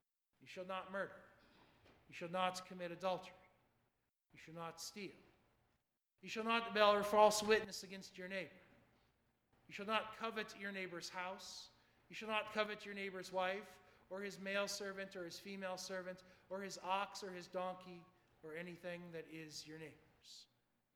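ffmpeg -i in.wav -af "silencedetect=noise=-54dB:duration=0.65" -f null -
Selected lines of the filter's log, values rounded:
silence_start: 1.21
silence_end: 2.10 | silence_duration: 0.89
silence_start: 3.31
silence_end: 4.35 | silence_duration: 1.04
silence_start: 5.11
silence_end: 6.24 | silence_duration: 1.13
silence_start: 8.57
silence_end: 9.69 | silence_duration: 1.12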